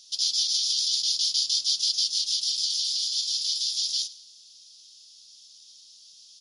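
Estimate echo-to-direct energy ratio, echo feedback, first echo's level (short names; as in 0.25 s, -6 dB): -18.0 dB, 43%, -19.0 dB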